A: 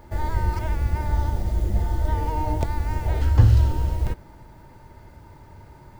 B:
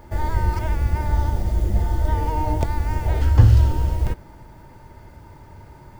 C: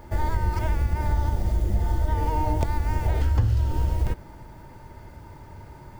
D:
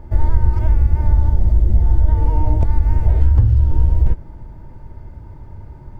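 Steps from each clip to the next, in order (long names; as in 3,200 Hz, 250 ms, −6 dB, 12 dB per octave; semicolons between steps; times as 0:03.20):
notch filter 4,000 Hz, Q 24; level +2.5 dB
downward compressor 6 to 1, threshold −18 dBFS, peak gain reduction 11.5 dB
spectral tilt −3 dB per octave; level −2.5 dB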